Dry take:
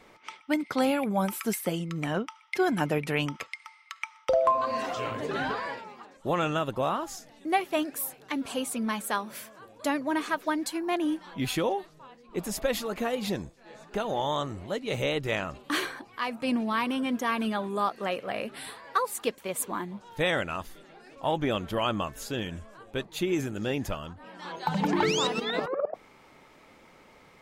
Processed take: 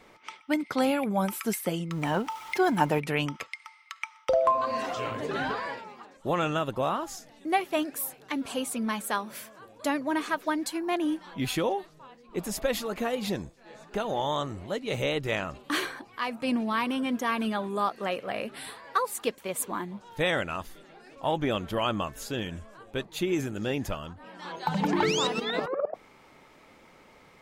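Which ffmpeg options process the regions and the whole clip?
ffmpeg -i in.wav -filter_complex "[0:a]asettb=1/sr,asplit=3[link_01][link_02][link_03];[link_01]atrim=end=1.914[link_04];[link_02]atrim=start=1.91:end=3,asetpts=PTS-STARTPTS,afade=type=in:duration=0.004:curve=qsin,afade=type=out:start_time=1.086:duration=0.004:curve=qsin,aeval=exprs='val(0)+0.5*0.00841*sgn(val(0))':channel_layout=same,equalizer=frequency=900:width_type=o:width=0.37:gain=9.5[link_05];[link_03]atrim=start=2.996[link_06];[link_04][link_05]acrossfade=duration=0.004:curve1=hsin:curve2=qsin[link_07];[link_07][link_06]acrossfade=duration=0.004:curve1=qsin:curve2=hsin" out.wav

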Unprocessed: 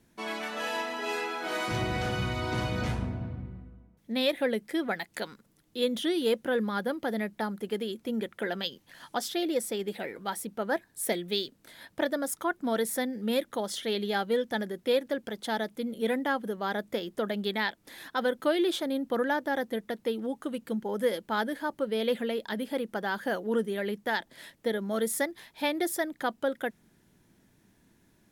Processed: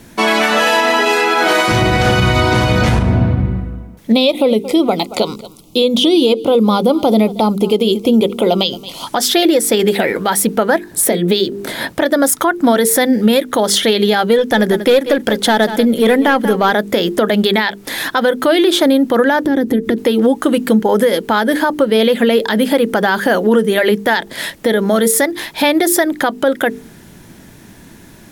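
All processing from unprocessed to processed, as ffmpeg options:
ffmpeg -i in.wav -filter_complex "[0:a]asettb=1/sr,asplit=3[link_01][link_02][link_03];[link_01]atrim=end=4.124[link_04];[link_02]atrim=start=4.12:end=9.07,asetpts=PTS-STARTPTS,afade=type=in:duration=0.004:curve=qsin,afade=type=out:start_time=4.946:duration=0.004:curve=qsin,acrossover=split=6100[link_05][link_06];[link_06]acompressor=threshold=-55dB:ratio=4:attack=1:release=60[link_07];[link_05][link_07]amix=inputs=2:normalize=0,asuperstop=centerf=1700:order=4:qfactor=1.3,aecho=1:1:225:0.0794,atrim=end_sample=218295[link_08];[link_03]atrim=start=9.066[link_09];[link_04][link_08]acrossfade=duration=0.004:curve1=hsin:curve2=qsin[link_10];[link_10][link_09]acrossfade=duration=0.004:curve1=qsin:curve2=hsin,asettb=1/sr,asplit=3[link_11][link_12][link_13];[link_11]atrim=end=10.914[link_14];[link_12]atrim=start=10.91:end=11.93,asetpts=PTS-STARTPTS,afade=type=in:duration=0.004:curve=qsin,afade=type=out:start_time=1.016:duration=0.004:curve=qsin,equalizer=frequency=270:width=0.32:gain=9,bandreject=frequency=50:width_type=h:width=6,bandreject=frequency=100:width_type=h:width=6,bandreject=frequency=150:width_type=h:width=6,bandreject=frequency=200:width_type=h:width=6,bandreject=frequency=250:width_type=h:width=6,bandreject=frequency=300:width_type=h:width=6,bandreject=frequency=350:width_type=h:width=6,bandreject=frequency=400:width_type=h:width=6,bandreject=frequency=450:width_type=h:width=6[link_15];[link_13]atrim=start=11.926[link_16];[link_14][link_15]acrossfade=duration=0.004:curve1=hsin:curve2=qsin[link_17];[link_17][link_16]acrossfade=duration=0.004:curve1=qsin:curve2=hsin,asettb=1/sr,asplit=3[link_18][link_19][link_20];[link_18]atrim=end=14.384[link_21];[link_19]atrim=start=14.38:end=16.71,asetpts=PTS-STARTPTS,afade=type=in:duration=0.004:curve=qsin,afade=type=out:start_time=2.326:duration=0.004:curve=qsin,aeval=exprs='(tanh(10*val(0)+0.1)-tanh(0.1))/10':channel_layout=same,aecho=1:1:188:0.168,atrim=end_sample=102753[link_22];[link_20]atrim=start=16.706[link_23];[link_21][link_22]acrossfade=duration=0.004:curve1=hsin:curve2=qsin[link_24];[link_24][link_23]acrossfade=duration=0.004:curve1=qsin:curve2=hsin,asettb=1/sr,asplit=3[link_25][link_26][link_27];[link_25]atrim=end=19.444[link_28];[link_26]atrim=start=19.44:end=19.98,asetpts=PTS-STARTPTS,afade=type=in:duration=0.004:curve=qsin,afade=type=out:start_time=0.536:duration=0.004:curve=qsin,lowshelf=frequency=490:width_type=q:width=1.5:gain=11.5,acompressor=threshold=-36dB:ratio=5:attack=3.2:release=140:knee=1:detection=peak[link_29];[link_27]atrim=start=19.976[link_30];[link_28][link_29]acrossfade=duration=0.004:curve1=hsin:curve2=qsin[link_31];[link_31][link_30]acrossfade=duration=0.004:curve1=qsin:curve2=hsin,bandreject=frequency=50:width_type=h:width=6,bandreject=frequency=100:width_type=h:width=6,bandreject=frequency=150:width_type=h:width=6,bandreject=frequency=200:width_type=h:width=6,bandreject=frequency=250:width_type=h:width=6,bandreject=frequency=300:width_type=h:width=6,bandreject=frequency=350:width_type=h:width=6,bandreject=frequency=400:width_type=h:width=6,bandreject=frequency=450:width_type=h:width=6,acompressor=threshold=-32dB:ratio=6,alimiter=level_in=27.5dB:limit=-1dB:release=50:level=0:latency=1,volume=-2.5dB" out.wav

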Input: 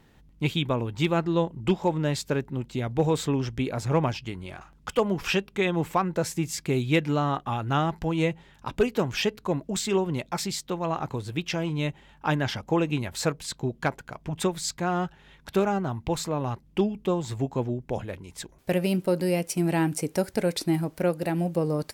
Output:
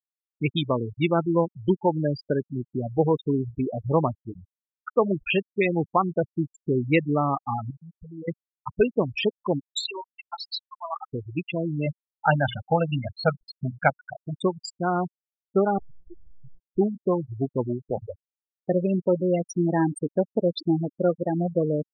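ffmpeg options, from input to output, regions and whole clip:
ffmpeg -i in.wav -filter_complex "[0:a]asettb=1/sr,asplit=3[link_01][link_02][link_03];[link_01]atrim=end=7.704[link_04];[link_02]atrim=start=7.7:end=8.28,asetpts=PTS-STARTPTS,afade=type=in:duration=0.004:curve=qsin,afade=type=out:start_time=0.576:duration=0.004:curve=qsin,bandreject=frequency=60:width_type=h:width=6,bandreject=frequency=120:width_type=h:width=6,bandreject=frequency=180:width_type=h:width=6,bandreject=frequency=240:width_type=h:width=6,bandreject=frequency=300:width_type=h:width=6,bandreject=frequency=360:width_type=h:width=6,acompressor=threshold=-33dB:ratio=12:attack=3.2:release=140:knee=1:detection=peak,acrusher=bits=6:mix=0:aa=0.5[link_05];[link_03]atrim=start=8.276[link_06];[link_04][link_05]acrossfade=duration=0.004:curve1=hsin:curve2=qsin[link_07];[link_07][link_06]acrossfade=duration=0.004:curve1=qsin:curve2=hsin,asettb=1/sr,asplit=3[link_08][link_09][link_10];[link_08]atrim=end=9.694[link_11];[link_09]atrim=start=9.69:end=11.13,asetpts=PTS-STARTPTS,afade=type=in:duration=0.004:curve=qsin,afade=type=out:start_time=1.436:duration=0.004:curve=qsin,highpass=880,equalizer=frequency=3900:width_type=o:width=0.46:gain=7[link_12];[link_10]atrim=start=11.126[link_13];[link_11][link_12]acrossfade=duration=0.004:curve1=hsin:curve2=qsin[link_14];[link_14][link_13]acrossfade=duration=0.004:curve1=qsin:curve2=hsin,asettb=1/sr,asplit=3[link_15][link_16][link_17];[link_15]atrim=end=11.864[link_18];[link_16]atrim=start=11.86:end=14.21,asetpts=PTS-STARTPTS,afade=type=in:duration=0.004:curve=qsin,afade=type=out:start_time=2.346:duration=0.004:curve=qsin,lowpass=4800,bandreject=frequency=60:width_type=h:width=6,bandreject=frequency=120:width_type=h:width=6,bandreject=frequency=180:width_type=h:width=6,bandreject=frequency=240:width_type=h:width=6,bandreject=frequency=300:width_type=h:width=6,bandreject=frequency=360:width_type=h:width=6,aecho=1:1:1.4:0.89,atrim=end_sample=103635[link_19];[link_17]atrim=start=14.206[link_20];[link_18][link_19]acrossfade=duration=0.004:curve1=hsin:curve2=qsin[link_21];[link_21][link_20]acrossfade=duration=0.004:curve1=qsin:curve2=hsin,asettb=1/sr,asplit=3[link_22][link_23][link_24];[link_22]atrim=end=15.784[link_25];[link_23]atrim=start=15.78:end=16.78,asetpts=PTS-STARTPTS,afade=type=in:duration=0.004:curve=qsin,afade=type=out:start_time=0.996:duration=0.004:curve=qsin,acompressor=threshold=-31dB:ratio=12:attack=3.2:release=140:knee=1:detection=peak,aeval=exprs='abs(val(0))':channel_layout=same,asplit=2[link_26][link_27];[link_27]adelay=38,volume=-4.5dB[link_28];[link_26][link_28]amix=inputs=2:normalize=0,atrim=end_sample=44100[link_29];[link_24]atrim=start=16.776[link_30];[link_25][link_29]acrossfade=duration=0.004:curve1=hsin:curve2=qsin[link_31];[link_31][link_30]acrossfade=duration=0.004:curve1=qsin:curve2=hsin,afftfilt=real='re*gte(hypot(re,im),0.112)':imag='im*gte(hypot(re,im),0.112)':win_size=1024:overlap=0.75,lowshelf=frequency=100:gain=-11,volume=3.5dB" out.wav

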